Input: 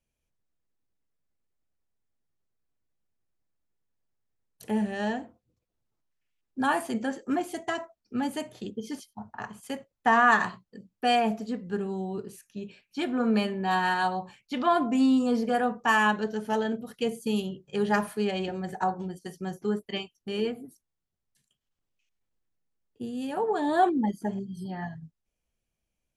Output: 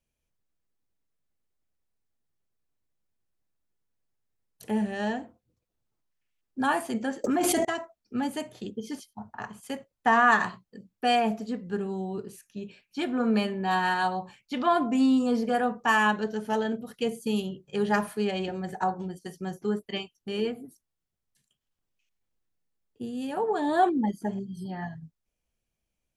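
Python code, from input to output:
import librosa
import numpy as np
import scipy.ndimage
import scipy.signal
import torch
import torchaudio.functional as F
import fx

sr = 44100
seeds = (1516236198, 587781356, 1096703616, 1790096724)

y = fx.env_flatten(x, sr, amount_pct=100, at=(7.24, 7.65))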